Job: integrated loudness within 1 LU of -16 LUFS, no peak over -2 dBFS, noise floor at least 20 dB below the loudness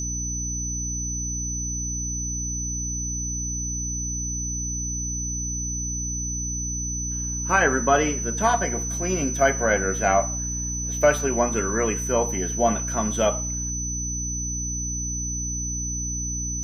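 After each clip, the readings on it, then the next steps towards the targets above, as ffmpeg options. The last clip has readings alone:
hum 60 Hz; harmonics up to 300 Hz; hum level -29 dBFS; steady tone 6000 Hz; tone level -28 dBFS; loudness -24.5 LUFS; peak -5.5 dBFS; loudness target -16.0 LUFS
-> -af "bandreject=f=60:t=h:w=4,bandreject=f=120:t=h:w=4,bandreject=f=180:t=h:w=4,bandreject=f=240:t=h:w=4,bandreject=f=300:t=h:w=4"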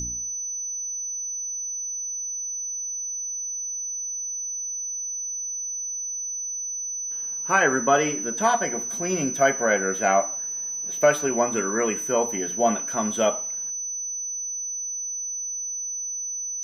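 hum none; steady tone 6000 Hz; tone level -28 dBFS
-> -af "bandreject=f=6k:w=30"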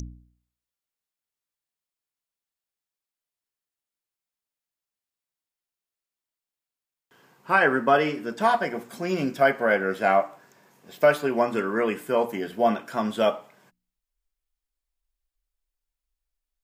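steady tone none; loudness -24.0 LUFS; peak -5.0 dBFS; loudness target -16.0 LUFS
-> -af "volume=8dB,alimiter=limit=-2dB:level=0:latency=1"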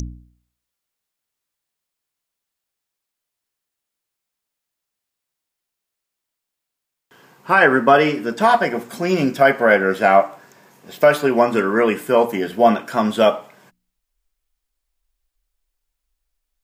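loudness -16.5 LUFS; peak -2.0 dBFS; noise floor -82 dBFS

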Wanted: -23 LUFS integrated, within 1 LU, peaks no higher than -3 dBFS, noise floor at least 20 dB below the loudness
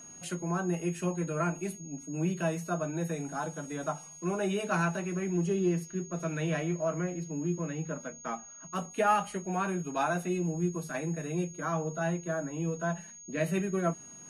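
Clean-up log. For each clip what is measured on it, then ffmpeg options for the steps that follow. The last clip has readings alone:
steady tone 6600 Hz; tone level -47 dBFS; loudness -32.5 LUFS; peak -16.0 dBFS; loudness target -23.0 LUFS
-> -af "bandreject=f=6.6k:w=30"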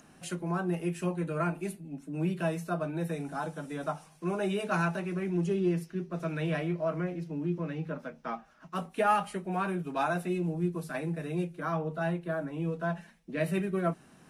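steady tone none; loudness -33.0 LUFS; peak -16.5 dBFS; loudness target -23.0 LUFS
-> -af "volume=10dB"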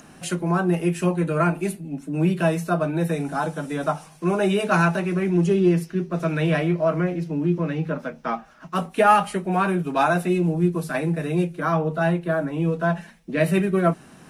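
loudness -23.0 LUFS; peak -6.5 dBFS; noise floor -48 dBFS

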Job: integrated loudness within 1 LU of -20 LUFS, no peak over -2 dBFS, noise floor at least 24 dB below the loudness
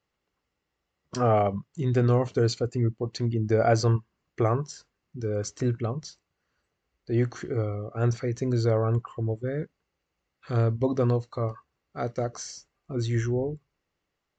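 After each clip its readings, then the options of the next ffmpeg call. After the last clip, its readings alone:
loudness -27.5 LUFS; peak -11.0 dBFS; loudness target -20.0 LUFS
-> -af "volume=7.5dB"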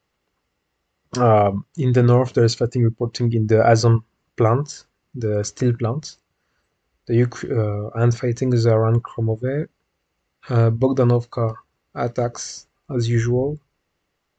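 loudness -20.0 LUFS; peak -3.5 dBFS; noise floor -75 dBFS

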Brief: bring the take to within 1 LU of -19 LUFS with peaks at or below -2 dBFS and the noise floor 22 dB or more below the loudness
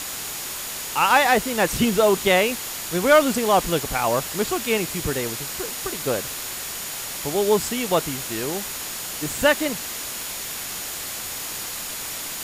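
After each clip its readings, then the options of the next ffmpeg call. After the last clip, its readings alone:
steady tone 6900 Hz; tone level -40 dBFS; noise floor -32 dBFS; noise floor target -45 dBFS; loudness -22.5 LUFS; peak -5.0 dBFS; loudness target -19.0 LUFS
-> -af "bandreject=f=6.9k:w=30"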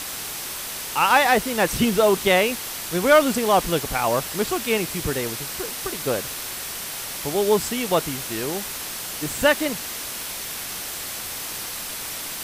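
steady tone none; noise floor -32 dBFS; noise floor target -45 dBFS
-> -af "afftdn=nr=13:nf=-32"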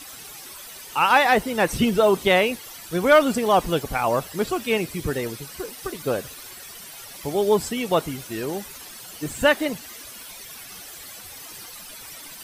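noise floor -41 dBFS; noise floor target -44 dBFS
-> -af "afftdn=nr=6:nf=-41"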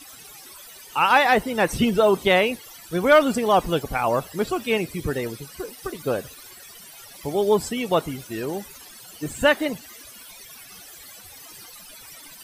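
noise floor -45 dBFS; loudness -22.0 LUFS; peak -5.5 dBFS; loudness target -19.0 LUFS
-> -af "volume=3dB"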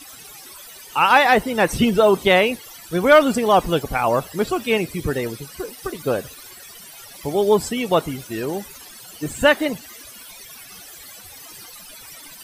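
loudness -19.0 LUFS; peak -2.5 dBFS; noise floor -42 dBFS

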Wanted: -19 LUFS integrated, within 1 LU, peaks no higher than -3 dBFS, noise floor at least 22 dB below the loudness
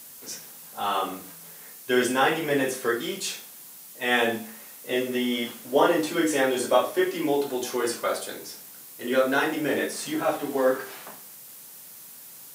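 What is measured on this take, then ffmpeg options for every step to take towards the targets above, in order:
noise floor -45 dBFS; noise floor target -48 dBFS; loudness -25.5 LUFS; peak -7.0 dBFS; loudness target -19.0 LUFS
-> -af "afftdn=nr=6:nf=-45"
-af "volume=6.5dB,alimiter=limit=-3dB:level=0:latency=1"

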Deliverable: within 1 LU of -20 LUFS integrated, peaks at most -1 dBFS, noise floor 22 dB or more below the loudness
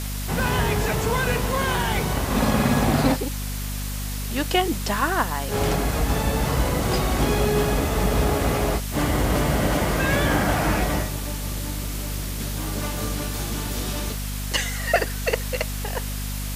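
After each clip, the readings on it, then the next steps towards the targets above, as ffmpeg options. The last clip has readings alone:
hum 50 Hz; harmonics up to 250 Hz; hum level -26 dBFS; noise floor -29 dBFS; noise floor target -46 dBFS; loudness -24.0 LUFS; peak -5.5 dBFS; loudness target -20.0 LUFS
-> -af "bandreject=f=50:t=h:w=4,bandreject=f=100:t=h:w=4,bandreject=f=150:t=h:w=4,bandreject=f=200:t=h:w=4,bandreject=f=250:t=h:w=4"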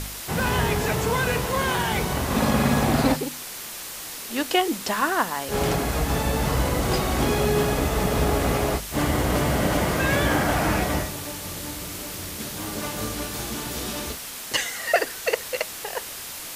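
hum none; noise floor -36 dBFS; noise floor target -47 dBFS
-> -af "afftdn=nr=11:nf=-36"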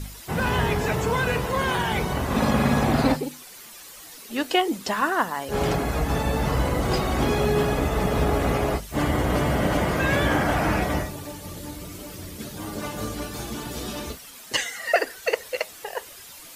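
noise floor -44 dBFS; noise floor target -47 dBFS
-> -af "afftdn=nr=6:nf=-44"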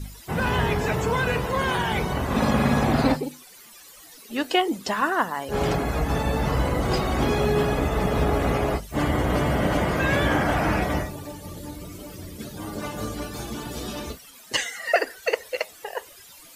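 noise floor -48 dBFS; loudness -24.5 LUFS; peak -6.5 dBFS; loudness target -20.0 LUFS
-> -af "volume=4.5dB"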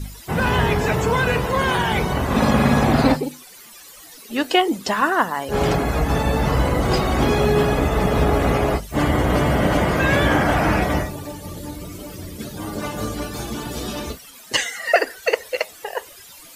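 loudness -20.0 LUFS; peak -2.0 dBFS; noise floor -43 dBFS

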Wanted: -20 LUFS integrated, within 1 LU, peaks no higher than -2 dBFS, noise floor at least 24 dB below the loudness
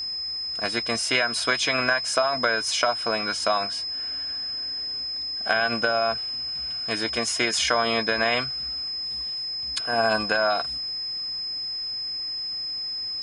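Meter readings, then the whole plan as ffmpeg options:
steady tone 5100 Hz; tone level -28 dBFS; loudness -24.5 LUFS; peak -7.0 dBFS; loudness target -20.0 LUFS
-> -af "bandreject=f=5.1k:w=30"
-af "volume=4.5dB"

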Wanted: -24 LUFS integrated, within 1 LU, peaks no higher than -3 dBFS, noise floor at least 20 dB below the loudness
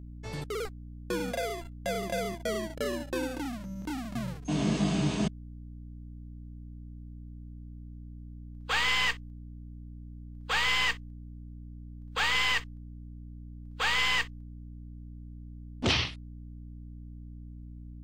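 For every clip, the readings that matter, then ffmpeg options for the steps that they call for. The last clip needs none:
hum 60 Hz; harmonics up to 300 Hz; hum level -42 dBFS; loudness -30.0 LUFS; peak -15.5 dBFS; loudness target -24.0 LUFS
-> -af "bandreject=f=60:t=h:w=4,bandreject=f=120:t=h:w=4,bandreject=f=180:t=h:w=4,bandreject=f=240:t=h:w=4,bandreject=f=300:t=h:w=4"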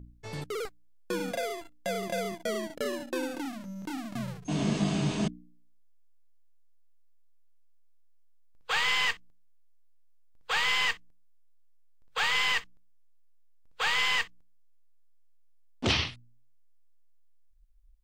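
hum none; loudness -30.0 LUFS; peak -15.5 dBFS; loudness target -24.0 LUFS
-> -af "volume=6dB"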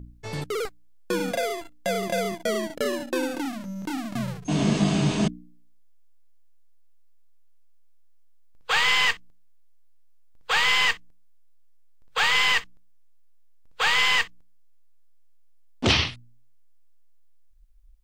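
loudness -24.0 LUFS; peak -9.5 dBFS; noise floor -50 dBFS

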